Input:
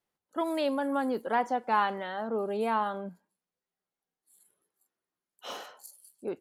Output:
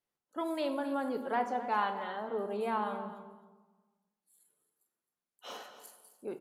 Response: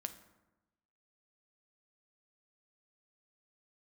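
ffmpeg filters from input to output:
-filter_complex "[0:a]bandreject=frequency=50:width_type=h:width=6,bandreject=frequency=100:width_type=h:width=6,bandreject=frequency=150:width_type=h:width=6,aecho=1:1:264|528:0.2|0.0299[link_01];[1:a]atrim=start_sample=2205,asetrate=31752,aresample=44100[link_02];[link_01][link_02]afir=irnorm=-1:irlink=0,volume=-4dB"

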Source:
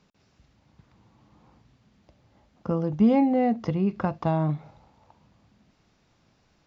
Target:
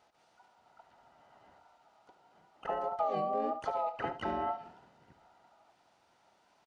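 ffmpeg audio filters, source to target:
ffmpeg -i in.wav -filter_complex "[0:a]afftfilt=real='real(if(between(b,1,1008),(2*floor((b-1)/48)+1)*48-b,b),0)':imag='imag(if(between(b,1,1008),(2*floor((b-1)/48)+1)*48-b,b),0)*if(between(b,1,1008),-1,1)':win_size=2048:overlap=0.75,highpass=frequency=75:poles=1,acompressor=threshold=-28dB:ratio=4,asplit=4[link_01][link_02][link_03][link_04];[link_02]asetrate=33038,aresample=44100,atempo=1.33484,volume=-17dB[link_05];[link_03]asetrate=35002,aresample=44100,atempo=1.25992,volume=-1dB[link_06];[link_04]asetrate=66075,aresample=44100,atempo=0.66742,volume=-5dB[link_07];[link_01][link_05][link_06][link_07]amix=inputs=4:normalize=0,aecho=1:1:73:0.224,volume=-7dB" out.wav

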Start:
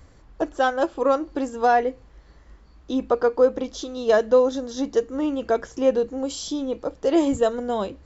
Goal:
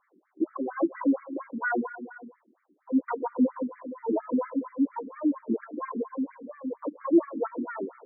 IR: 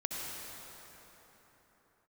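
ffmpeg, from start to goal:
-filter_complex "[0:a]asplit=3[link_01][link_02][link_03];[link_02]asetrate=22050,aresample=44100,atempo=2,volume=-9dB[link_04];[link_03]asetrate=88200,aresample=44100,atempo=0.5,volume=-3dB[link_05];[link_01][link_04][link_05]amix=inputs=3:normalize=0,lowshelf=frequency=390:width_type=q:width=1.5:gain=7,acrossover=split=6400[link_06][link_07];[link_07]acompressor=threshold=-48dB:ratio=4:attack=1:release=60[link_08];[link_06][link_08]amix=inputs=2:normalize=0,asplit=2[link_09][link_10];[1:a]atrim=start_sample=2205,afade=type=out:start_time=0.41:duration=0.01,atrim=end_sample=18522,asetrate=30429,aresample=44100[link_11];[link_10][link_11]afir=irnorm=-1:irlink=0,volume=-16.5dB[link_12];[link_09][link_12]amix=inputs=2:normalize=0,afftfilt=real='re*between(b*sr/1024,280*pow(1700/280,0.5+0.5*sin(2*PI*4.3*pts/sr))/1.41,280*pow(1700/280,0.5+0.5*sin(2*PI*4.3*pts/sr))*1.41)':imag='im*between(b*sr/1024,280*pow(1700/280,0.5+0.5*sin(2*PI*4.3*pts/sr))/1.41,280*pow(1700/280,0.5+0.5*sin(2*PI*4.3*pts/sr))*1.41)':win_size=1024:overlap=0.75,volume=-8dB"

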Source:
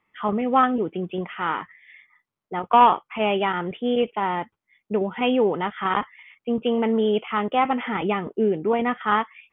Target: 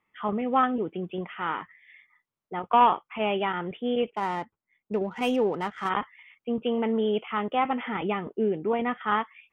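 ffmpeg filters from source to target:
ffmpeg -i in.wav -filter_complex "[0:a]asplit=3[link_01][link_02][link_03];[link_01]afade=type=out:start_time=4.09:duration=0.02[link_04];[link_02]adynamicsmooth=sensitivity=6.5:basefreq=2300,afade=type=in:start_time=4.09:duration=0.02,afade=type=out:start_time=5.88:duration=0.02[link_05];[link_03]afade=type=in:start_time=5.88:duration=0.02[link_06];[link_04][link_05][link_06]amix=inputs=3:normalize=0,volume=-4.5dB" out.wav

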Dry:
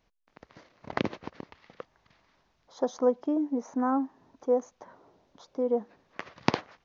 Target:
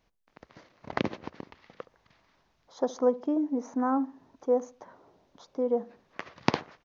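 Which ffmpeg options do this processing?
ffmpeg -i in.wav -filter_complex "[0:a]asplit=2[link_01][link_02];[link_02]adelay=69,lowpass=frequency=840:poles=1,volume=-17dB,asplit=2[link_03][link_04];[link_04]adelay=69,lowpass=frequency=840:poles=1,volume=0.35,asplit=2[link_05][link_06];[link_06]adelay=69,lowpass=frequency=840:poles=1,volume=0.35[link_07];[link_01][link_03][link_05][link_07]amix=inputs=4:normalize=0" out.wav

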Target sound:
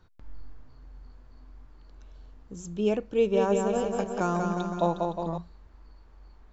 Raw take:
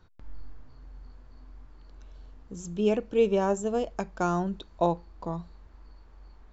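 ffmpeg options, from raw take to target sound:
ffmpeg -i in.wav -filter_complex "[0:a]asettb=1/sr,asplit=3[link_01][link_02][link_03];[link_01]atrim=end=3.144[link_04];[link_02]atrim=start=3.14:end=5.38,asetpts=PTS-STARTPTS,afade=type=in:duration=0.004:curve=qsin,afade=type=out:start_time=2.236:duration=0.004:curve=qsin,aecho=1:1:190|361|514.9|653.4|778.1:0.631|0.398|0.251|0.158|0.1,atrim=end_sample=98784[link_05];[link_03]atrim=start=5.376[link_06];[link_04][link_05]acrossfade=duration=0.004:curve1=hsin:curve2=qsin[link_07];[link_07][link_06]acrossfade=duration=0.004:curve1=qsin:curve2=hsin,volume=-1dB" out.wav

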